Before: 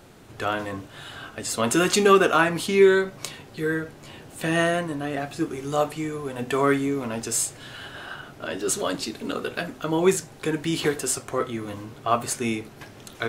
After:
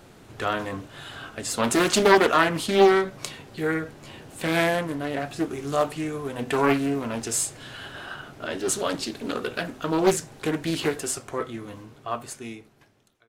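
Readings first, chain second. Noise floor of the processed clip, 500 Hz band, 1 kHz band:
-54 dBFS, -1.0 dB, +0.5 dB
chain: fade out at the end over 2.88 s; loudspeaker Doppler distortion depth 0.54 ms

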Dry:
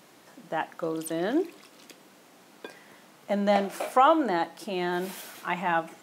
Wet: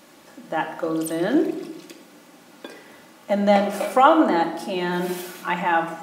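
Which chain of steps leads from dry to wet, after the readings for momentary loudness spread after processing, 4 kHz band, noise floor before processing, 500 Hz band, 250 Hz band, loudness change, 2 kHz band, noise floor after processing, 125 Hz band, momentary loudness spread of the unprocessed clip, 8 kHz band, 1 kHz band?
16 LU, +5.0 dB, -56 dBFS, +6.0 dB, +7.5 dB, +6.0 dB, +5.5 dB, -50 dBFS, +6.5 dB, 16 LU, +5.0 dB, +5.5 dB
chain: simulated room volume 3700 m³, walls furnished, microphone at 2.4 m; trim +3.5 dB

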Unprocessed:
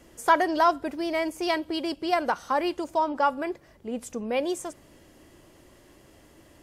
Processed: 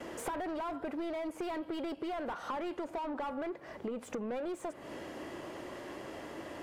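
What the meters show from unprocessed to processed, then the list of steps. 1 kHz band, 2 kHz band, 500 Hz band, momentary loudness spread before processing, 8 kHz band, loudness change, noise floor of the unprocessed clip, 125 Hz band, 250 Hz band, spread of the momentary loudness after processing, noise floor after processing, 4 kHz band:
-14.5 dB, -13.5 dB, -10.0 dB, 12 LU, -9.5 dB, -13.0 dB, -56 dBFS, no reading, -8.0 dB, 7 LU, -52 dBFS, -14.5 dB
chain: overdrive pedal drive 32 dB, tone 1 kHz, clips at -7.5 dBFS; dynamic bell 5.7 kHz, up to -6 dB, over -47 dBFS, Q 1.5; gate with hold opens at -32 dBFS; compression 12:1, threshold -28 dBFS, peak gain reduction 14.5 dB; trim -7.5 dB

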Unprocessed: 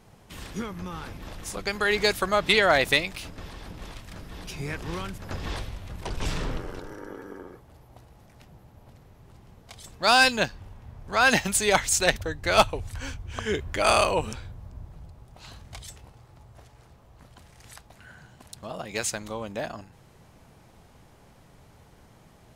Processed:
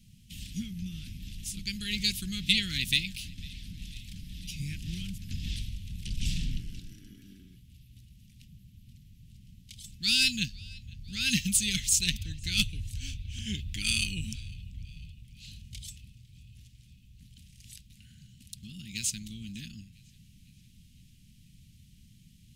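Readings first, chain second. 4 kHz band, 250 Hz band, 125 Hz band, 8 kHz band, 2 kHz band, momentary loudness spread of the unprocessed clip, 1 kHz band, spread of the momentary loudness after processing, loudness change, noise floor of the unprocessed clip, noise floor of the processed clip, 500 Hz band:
-0.5 dB, -3.0 dB, -0.5 dB, -0.5 dB, -10.0 dB, 23 LU, under -35 dB, 21 LU, -5.5 dB, -55 dBFS, -58 dBFS, -34.0 dB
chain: Chebyshev band-stop 210–2800 Hz, order 3; band-passed feedback delay 501 ms, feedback 66%, band-pass 2.9 kHz, level -24 dB

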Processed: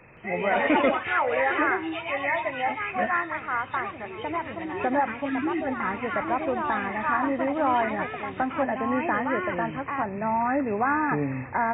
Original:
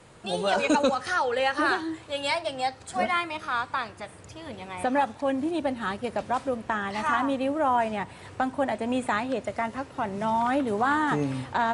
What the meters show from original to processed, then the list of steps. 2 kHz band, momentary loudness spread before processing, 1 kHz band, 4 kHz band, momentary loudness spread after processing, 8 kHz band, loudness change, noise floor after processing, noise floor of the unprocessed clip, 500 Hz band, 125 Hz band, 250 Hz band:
+3.0 dB, 8 LU, +1.0 dB, -7.0 dB, 7 LU, under -35 dB, +1.0 dB, -39 dBFS, -47 dBFS, +0.5 dB, +0.5 dB, +1.0 dB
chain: knee-point frequency compression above 1.7 kHz 4:1; spectral selection erased 5.25–5.67 s, 380–1200 Hz; ever faster or slower copies 170 ms, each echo +3 st, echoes 2, each echo -6 dB

